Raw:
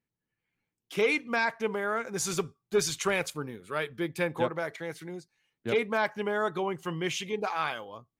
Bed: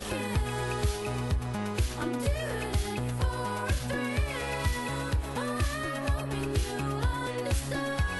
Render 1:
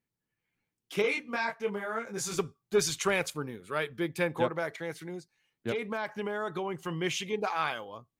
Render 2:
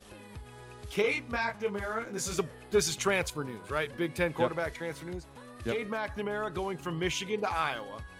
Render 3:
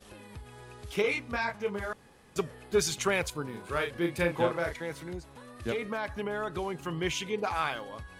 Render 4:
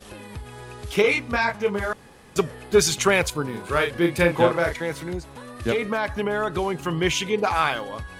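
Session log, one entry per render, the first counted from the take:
1.02–2.39 s: detune thickener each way 24 cents; 5.71–6.99 s: compression, threshold -29 dBFS
add bed -17 dB
1.93–2.36 s: room tone; 3.50–4.74 s: doubling 35 ms -5 dB
trim +9 dB

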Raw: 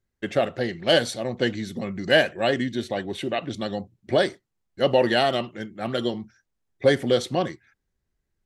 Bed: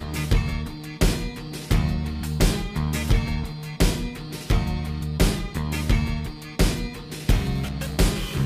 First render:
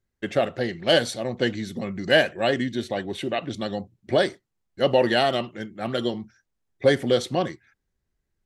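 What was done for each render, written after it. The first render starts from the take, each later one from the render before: no audible change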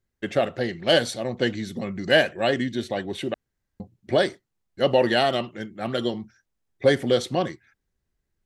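3.34–3.80 s: room tone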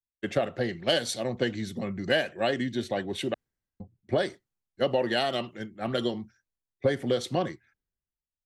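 compression 8:1, threshold -23 dBFS, peak gain reduction 11 dB; three bands expanded up and down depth 70%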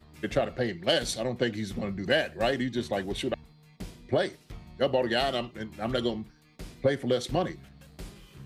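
add bed -23 dB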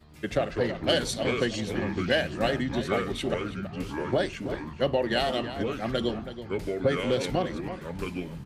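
echo from a far wall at 56 m, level -11 dB; ever faster or slower copies 85 ms, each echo -5 st, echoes 3, each echo -6 dB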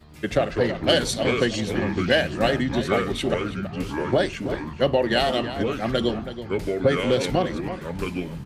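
trim +5 dB

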